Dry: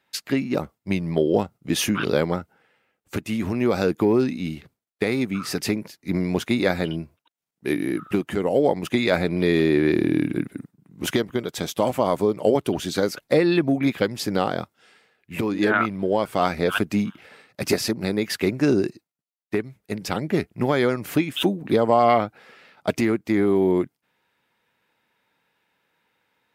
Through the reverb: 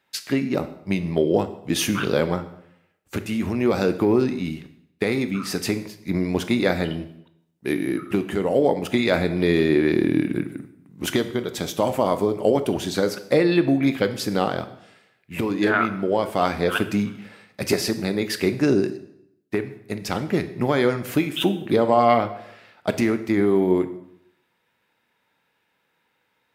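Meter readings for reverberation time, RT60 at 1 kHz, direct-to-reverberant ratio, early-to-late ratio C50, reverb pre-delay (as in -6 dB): 0.75 s, 0.75 s, 10.0 dB, 13.0 dB, 17 ms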